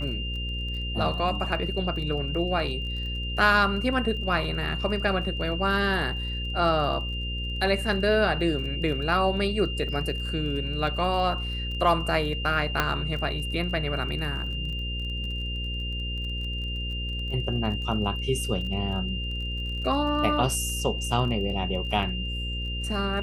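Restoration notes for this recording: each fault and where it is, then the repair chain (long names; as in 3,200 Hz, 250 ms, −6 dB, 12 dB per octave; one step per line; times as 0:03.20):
mains buzz 60 Hz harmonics 9 −32 dBFS
surface crackle 22 per second −36 dBFS
whistle 2,800 Hz −33 dBFS
0:12.80: click −8 dBFS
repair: click removal
notch filter 2,800 Hz, Q 30
hum removal 60 Hz, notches 9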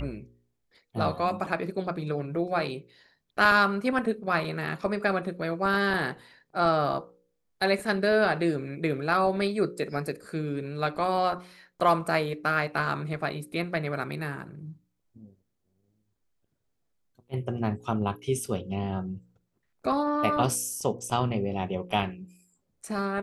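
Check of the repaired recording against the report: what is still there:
none of them is left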